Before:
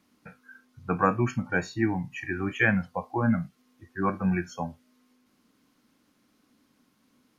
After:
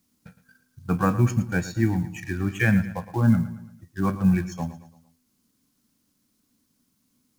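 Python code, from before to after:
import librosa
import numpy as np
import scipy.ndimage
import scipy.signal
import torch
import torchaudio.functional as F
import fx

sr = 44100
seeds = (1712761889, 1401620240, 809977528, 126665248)

p1 = fx.law_mismatch(x, sr, coded='A')
p2 = fx.bass_treble(p1, sr, bass_db=12, treble_db=13)
p3 = p2 + fx.echo_feedback(p2, sr, ms=113, feedback_pct=45, wet_db=-14, dry=0)
y = F.gain(torch.from_numpy(p3), -2.0).numpy()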